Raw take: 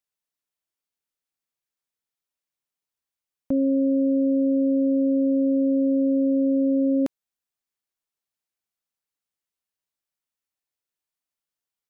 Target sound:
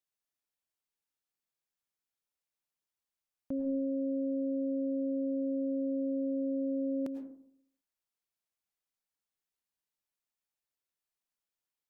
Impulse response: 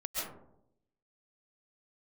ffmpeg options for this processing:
-filter_complex "[0:a]alimiter=level_in=0.5dB:limit=-24dB:level=0:latency=1:release=191,volume=-0.5dB,asplit=2[a][b];[1:a]atrim=start_sample=2205,asetrate=57330,aresample=44100[c];[b][c]afir=irnorm=-1:irlink=0,volume=-5.5dB[d];[a][d]amix=inputs=2:normalize=0,volume=-6.5dB"

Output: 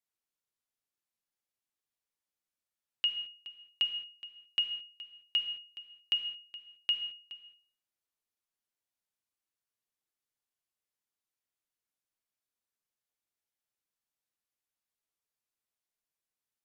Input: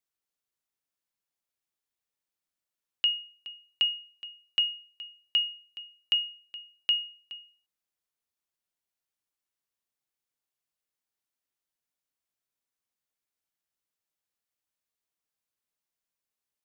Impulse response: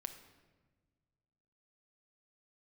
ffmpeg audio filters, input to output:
-filter_complex "[1:a]atrim=start_sample=2205,atrim=end_sample=6615,asetrate=29106,aresample=44100[a];[0:a][a]afir=irnorm=-1:irlink=0,volume=-2.5dB"

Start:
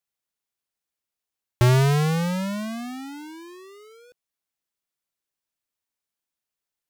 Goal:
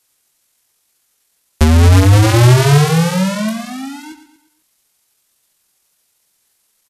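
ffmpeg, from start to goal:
-filter_complex "[0:a]asplit=2[a][b];[b]acrusher=bits=6:mix=0:aa=0.000001,volume=-11dB[c];[a][c]amix=inputs=2:normalize=0,bandreject=f=50:t=h:w=6,bandreject=f=100:t=h:w=6,bandreject=f=150:t=h:w=6,flanger=delay=19.5:depth=4:speed=0.46,acrossover=split=470[d][e];[e]acompressor=threshold=-29dB:ratio=3[f];[d][f]amix=inputs=2:normalize=0,highshelf=f=7.5k:g=9,asplit=2[g][h];[h]aecho=0:1:117|234|351|468:0.251|0.108|0.0464|0.02[i];[g][i]amix=inputs=2:normalize=0,asetrate=27781,aresample=44100,atempo=1.5874,alimiter=level_in=23.5dB:limit=-1dB:release=50:level=0:latency=1,volume=-1dB"

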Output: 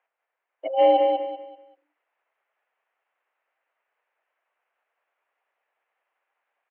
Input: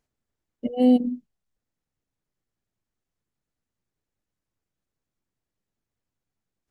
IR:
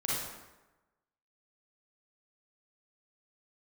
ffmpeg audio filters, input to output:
-af "aecho=1:1:193|386|579|772:0.501|0.14|0.0393|0.011,highpass=f=570:t=q:w=0.5412,highpass=f=570:t=q:w=1.307,lowpass=f=2.6k:t=q:w=0.5176,lowpass=f=2.6k:t=q:w=0.7071,lowpass=f=2.6k:t=q:w=1.932,afreqshift=51,dynaudnorm=f=240:g=7:m=6.5dB,volume=9dB"

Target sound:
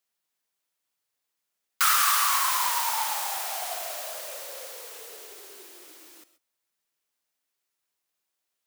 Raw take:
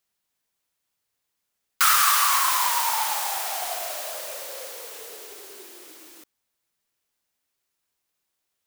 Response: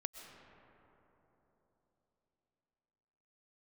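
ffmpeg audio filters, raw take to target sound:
-filter_complex "[0:a]lowshelf=f=160:g=-10[a];[1:a]atrim=start_sample=2205,afade=t=out:st=0.19:d=0.01,atrim=end_sample=8820[b];[a][b]afir=irnorm=-1:irlink=0"

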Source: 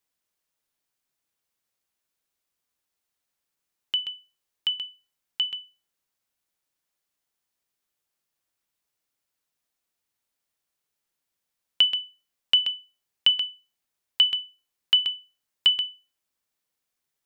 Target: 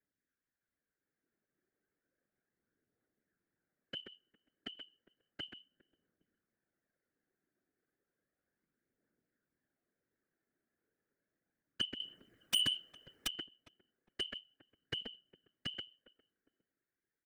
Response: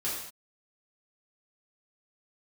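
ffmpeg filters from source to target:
-filter_complex "[0:a]firequalizer=gain_entry='entry(130,0);entry(240,8);entry(970,-15);entry(1600,7);entry(2800,-16)':delay=0.05:min_phase=1,acrossover=split=110|1100[a][b][c];[b]dynaudnorm=f=180:g=13:m=10.5dB[d];[a][d][c]amix=inputs=3:normalize=0,asettb=1/sr,asplit=3[e][f][g];[e]atrim=end=12.004[h];[f]atrim=start=12:end=13.27,asetpts=PTS-STARTPTS,afade=t=in:d=0.004:c=qsin,afade=t=out:st=1.266:d=0.004:c=qsin,aeval=exprs='0.211*sin(PI/2*5.01*val(0)/0.211)':c=same[i];[g]atrim=start=13.266[j];[h][i]acrossfade=d=0.004:c1=hsin:c2=qsin[k];[k][j]acrossfade=d=0.004:c1=qsin:c2=hsin,asplit=2[l][m];[m]adelay=407,lowpass=f=970:p=1,volume=-23dB,asplit=2[n][o];[o]adelay=407,lowpass=f=970:p=1,volume=0.32[p];[l][n][p]amix=inputs=3:normalize=0,aphaser=in_gain=1:out_gain=1:delay=3.2:decay=0.37:speed=0.33:type=triangular,asoftclip=type=tanh:threshold=-22.5dB,afftfilt=real='hypot(re,im)*cos(2*PI*random(0))':imag='hypot(re,im)*sin(2*PI*random(1))':win_size=512:overlap=0.75,volume=1dB"

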